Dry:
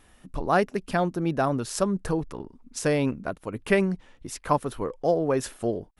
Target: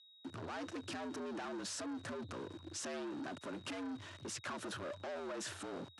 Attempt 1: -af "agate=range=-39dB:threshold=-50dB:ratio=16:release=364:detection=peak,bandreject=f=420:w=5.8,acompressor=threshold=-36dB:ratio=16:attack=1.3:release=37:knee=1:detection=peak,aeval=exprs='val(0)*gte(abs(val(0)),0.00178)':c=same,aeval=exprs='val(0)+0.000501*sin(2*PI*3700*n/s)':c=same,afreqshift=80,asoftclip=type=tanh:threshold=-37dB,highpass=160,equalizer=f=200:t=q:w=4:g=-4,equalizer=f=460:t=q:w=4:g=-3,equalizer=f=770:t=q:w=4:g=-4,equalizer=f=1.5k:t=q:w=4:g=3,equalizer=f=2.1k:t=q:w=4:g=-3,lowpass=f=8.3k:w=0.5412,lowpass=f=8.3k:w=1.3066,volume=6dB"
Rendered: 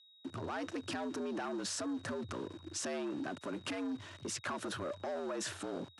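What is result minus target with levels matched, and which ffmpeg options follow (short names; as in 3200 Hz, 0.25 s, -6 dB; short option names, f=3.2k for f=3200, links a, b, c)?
soft clip: distortion -7 dB
-af "agate=range=-39dB:threshold=-50dB:ratio=16:release=364:detection=peak,bandreject=f=420:w=5.8,acompressor=threshold=-36dB:ratio=16:attack=1.3:release=37:knee=1:detection=peak,aeval=exprs='val(0)*gte(abs(val(0)),0.00178)':c=same,aeval=exprs='val(0)+0.000501*sin(2*PI*3700*n/s)':c=same,afreqshift=80,asoftclip=type=tanh:threshold=-44.5dB,highpass=160,equalizer=f=200:t=q:w=4:g=-4,equalizer=f=460:t=q:w=4:g=-3,equalizer=f=770:t=q:w=4:g=-4,equalizer=f=1.5k:t=q:w=4:g=3,equalizer=f=2.1k:t=q:w=4:g=-3,lowpass=f=8.3k:w=0.5412,lowpass=f=8.3k:w=1.3066,volume=6dB"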